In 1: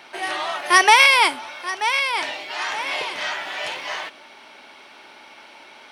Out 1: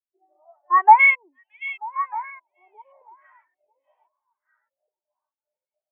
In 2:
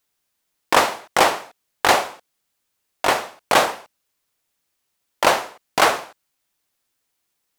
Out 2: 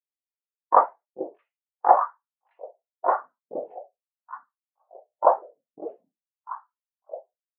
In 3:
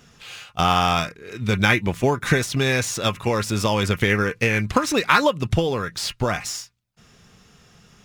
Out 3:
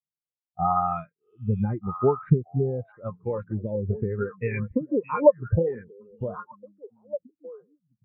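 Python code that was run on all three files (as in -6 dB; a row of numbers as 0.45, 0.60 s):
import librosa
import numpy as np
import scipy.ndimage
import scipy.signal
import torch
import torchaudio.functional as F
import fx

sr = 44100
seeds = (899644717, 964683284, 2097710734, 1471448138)

y = fx.filter_lfo_lowpass(x, sr, shape='saw_up', hz=0.87, low_hz=340.0, high_hz=2600.0, q=1.1)
y = fx.echo_stepped(y, sr, ms=622, hz=3500.0, octaves=-1.4, feedback_pct=70, wet_db=0.0)
y = fx.spectral_expand(y, sr, expansion=2.5)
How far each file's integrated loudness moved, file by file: +1.5, -4.5, -5.5 LU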